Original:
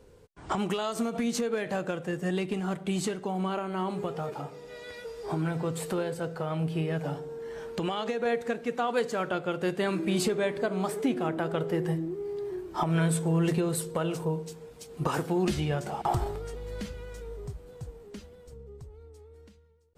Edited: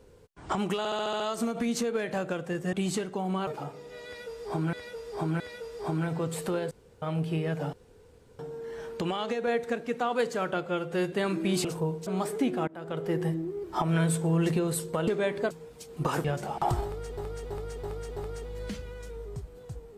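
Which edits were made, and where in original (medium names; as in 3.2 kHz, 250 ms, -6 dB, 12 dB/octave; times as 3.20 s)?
0.78 s: stutter 0.07 s, 7 plays
2.31–2.83 s: delete
3.57–4.25 s: delete
4.84–5.51 s: loop, 3 plays
6.15–6.46 s: room tone
7.17 s: insert room tone 0.66 s
9.44–9.75 s: stretch 1.5×
10.27–10.70 s: swap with 14.09–14.51 s
11.31–11.77 s: fade in, from -23.5 dB
12.27–12.65 s: delete
15.25–15.68 s: delete
16.28–16.61 s: loop, 5 plays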